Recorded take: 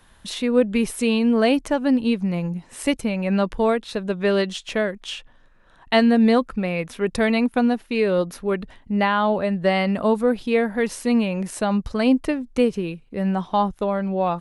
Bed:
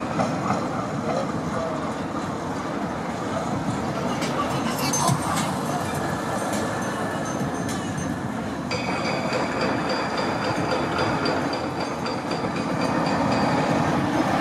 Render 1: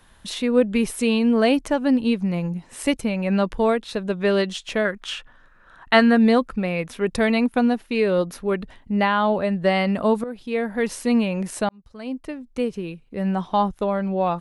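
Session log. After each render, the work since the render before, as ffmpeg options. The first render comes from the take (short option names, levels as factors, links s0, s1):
-filter_complex "[0:a]asettb=1/sr,asplit=3[s0][s1][s2];[s0]atrim=end=4.854[s3];[s1]atrim=start=4.85:end=6.18,asetpts=PTS-STARTPTS,afade=t=in:d=0.004:c=qsin,afade=t=out:st=1.326:d=0.004:c=qsin,equalizer=f=1400:t=o:w=0.84:g=10[s4];[s2]atrim=start=6.176[s5];[s3][s4]acrossfade=d=0.004:c1=hsin:c2=qsin[s6];[s6][s5]acrossfade=d=0.004:c1=qsin:c2=hsin,asplit=3[s7][s8][s9];[s7]atrim=end=10.24,asetpts=PTS-STARTPTS,afade=t=out:st=10.236:d=0.004:c=hsin:silence=0.16788[s10];[s8]atrim=start=10.24:end=11.69,asetpts=PTS-STARTPTS,afade=t=in:d=0.65:silence=0.16788,afade=t=out:st=1.446:d=0.004:c=hsin[s11];[s9]atrim=start=11.69,asetpts=PTS-STARTPTS,afade=t=in:d=1.77[s12];[s10][s11][s12]concat=n=3:v=0:a=1"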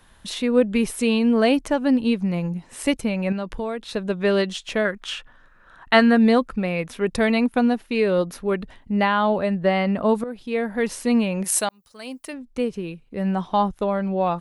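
-filter_complex "[0:a]asettb=1/sr,asplit=3[s0][s1][s2];[s0]atrim=end=3.324[s3];[s1]atrim=start=3.32:end=3.94,asetpts=PTS-STARTPTS,afade=t=in:d=0.004:c=qsin,afade=t=out:st=0.616:d=0.004:c=qsin,acompressor=threshold=0.0562:ratio=4:attack=3.2:release=140:knee=1:detection=peak[s4];[s2]atrim=start=3.936[s5];[s3][s4]acrossfade=d=0.004:c1=hsin:c2=qsin[s6];[s6][s5]acrossfade=d=0.004:c1=qsin:c2=hsin,asettb=1/sr,asplit=3[s7][s8][s9];[s7]atrim=end=9.554[s10];[s8]atrim=start=9.55:end=10.09,asetpts=PTS-STARTPTS,afade=t=in:d=0.004:c=qsin,afade=t=out:st=0.536:d=0.004:c=qsin,highshelf=f=4400:g=-11[s11];[s9]atrim=start=10.086[s12];[s10][s11]acrossfade=d=0.004:c1=hsin:c2=qsin[s13];[s13][s12]acrossfade=d=0.004:c1=qsin:c2=hsin,asplit=3[s14][s15][s16];[s14]afade=t=out:st=11.43:d=0.02[s17];[s15]aemphasis=mode=production:type=riaa,afade=t=in:st=11.43:d=0.02,afade=t=out:st=12.32:d=0.02[s18];[s16]afade=t=in:st=12.32:d=0.02[s19];[s17][s18][s19]amix=inputs=3:normalize=0"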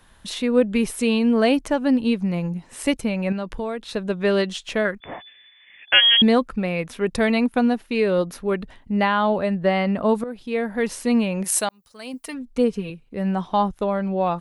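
-filter_complex "[0:a]asettb=1/sr,asplit=3[s0][s1][s2];[s0]atrim=end=5.004[s3];[s1]atrim=start=5:end=6.22,asetpts=PTS-STARTPTS,afade=t=in:d=0.004:c=qsin,afade=t=out:st=1.216:d=0.004:c=qsin,lowpass=f=3000:t=q:w=0.5098,lowpass=f=3000:t=q:w=0.6013,lowpass=f=3000:t=q:w=0.9,lowpass=f=3000:t=q:w=2.563,afreqshift=-3500[s4];[s2]atrim=start=6.216[s5];[s3][s4]acrossfade=d=0.004:c1=hsin:c2=qsin[s6];[s6][s5]acrossfade=d=0.004:c1=qsin:c2=hsin,asettb=1/sr,asplit=3[s7][s8][s9];[s7]atrim=end=12.134[s10];[s8]atrim=start=12.13:end=12.9,asetpts=PTS-STARTPTS,afade=t=in:d=0.004:c=qsin,afade=t=out:st=0.766:d=0.004:c=qsin,aecho=1:1:4.3:0.8,atrim=end_sample=33957[s11];[s9]atrim=start=12.896[s12];[s10][s11]acrossfade=d=0.004:c1=hsin:c2=qsin[s13];[s13][s12]acrossfade=d=0.004:c1=qsin:c2=hsin"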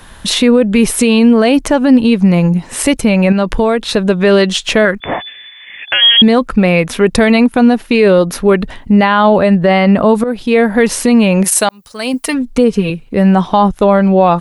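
-filter_complex "[0:a]asplit=2[s0][s1];[s1]acompressor=threshold=0.0447:ratio=6,volume=0.794[s2];[s0][s2]amix=inputs=2:normalize=0,alimiter=level_in=3.98:limit=0.891:release=50:level=0:latency=1"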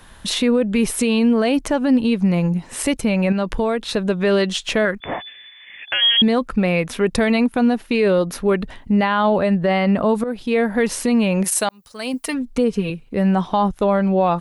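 -af "volume=0.398"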